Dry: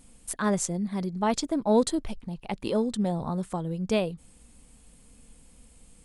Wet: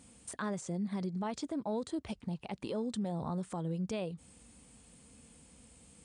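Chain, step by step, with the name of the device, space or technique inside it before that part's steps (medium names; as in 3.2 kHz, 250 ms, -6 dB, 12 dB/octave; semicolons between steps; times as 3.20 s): podcast mastering chain (high-pass 64 Hz 24 dB/octave; de-esser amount 65%; compression 3:1, threshold -33 dBFS, peak gain reduction 12 dB; peak limiter -28 dBFS, peak gain reduction 9 dB; MP3 96 kbps 22.05 kHz)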